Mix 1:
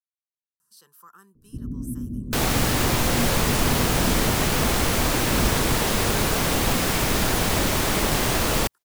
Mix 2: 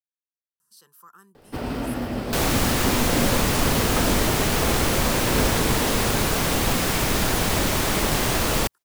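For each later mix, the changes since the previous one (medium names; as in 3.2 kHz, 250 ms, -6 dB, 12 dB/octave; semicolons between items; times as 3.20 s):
first sound: remove inverse Chebyshev low-pass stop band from 1.5 kHz, stop band 80 dB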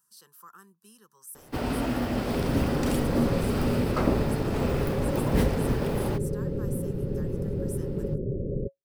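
speech: entry -0.60 s; second sound: add rippled Chebyshev low-pass 570 Hz, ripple 9 dB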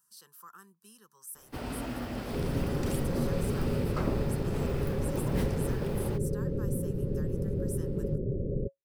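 first sound -6.5 dB; master: add peaking EQ 350 Hz -2.5 dB 3 oct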